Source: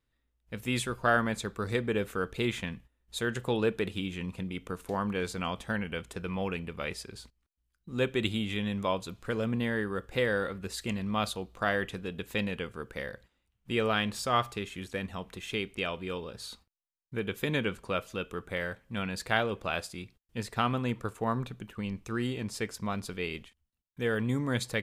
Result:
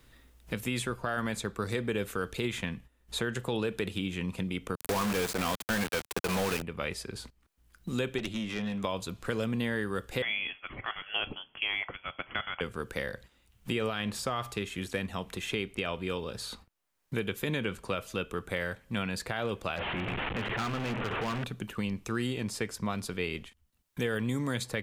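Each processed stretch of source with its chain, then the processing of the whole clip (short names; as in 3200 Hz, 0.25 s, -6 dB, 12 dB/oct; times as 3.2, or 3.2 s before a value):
4.75–6.62 HPF 230 Hz 6 dB/oct + companded quantiser 2-bit
8.18–8.84 HPF 110 Hz + high shelf 7700 Hz -8 dB + tube stage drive 27 dB, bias 0.7
10.22–12.61 steep high-pass 540 Hz 96 dB/oct + de-esser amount 85% + inverted band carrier 3900 Hz
19.76–21.44 delta modulation 16 kbps, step -29.5 dBFS + notches 50/100/150/200/250/300 Hz + overloaded stage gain 31.5 dB
whole clip: limiter -21.5 dBFS; bell 12000 Hz +2.5 dB 1.7 oct; three-band squash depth 70%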